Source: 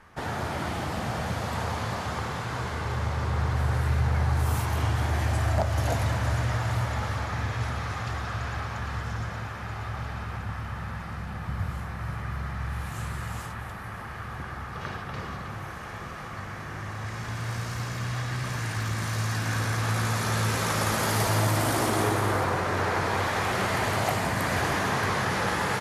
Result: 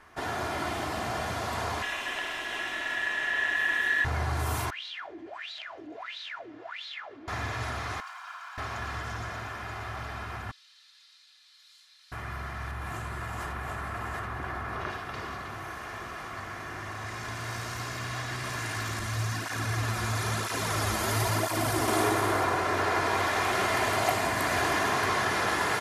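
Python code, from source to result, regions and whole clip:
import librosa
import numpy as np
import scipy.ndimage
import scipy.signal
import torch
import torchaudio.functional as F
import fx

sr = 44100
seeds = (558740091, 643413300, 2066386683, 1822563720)

y = fx.chain(x, sr, fx.ring_mod(carrier_hz=1800.0),
    fx.notch(hz=4700.0, q=9.3), at=(1.82, 4.05))
y = fx.chain(y, sr, fx.weighting(curve='D'),
    fx.wah_lfo(hz=1.5, low_hz=290.0, high_hz=4000.0, q=13.0),
    fx.env_flatten(amount_pct=50), at=(4.7, 7.28))
y = fx.chain(y, sr, fx.lower_of_two(delay_ms=1.3),
    fx.ladder_highpass(hz=1000.0, resonance_pct=65), at=(8.0, 8.58))
y = fx.chain(y, sr, fx.ladder_bandpass(hz=4400.0, resonance_pct=65),
    fx.high_shelf(hz=4700.0, db=9.5), at=(10.51, 12.12))
y = fx.chain(y, sr, fx.high_shelf(hz=2600.0, db=-9.0),
    fx.echo_single(ms=733, db=-5.0),
    fx.env_flatten(amount_pct=70), at=(12.71, 14.9))
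y = fx.chain(y, sr, fx.low_shelf(hz=110.0, db=11.5),
    fx.flanger_cancel(hz=1.0, depth_ms=8.0), at=(18.99, 21.88))
y = fx.low_shelf(y, sr, hz=190.0, db=-8.5)
y = y + 0.44 * np.pad(y, (int(2.9 * sr / 1000.0), 0))[:len(y)]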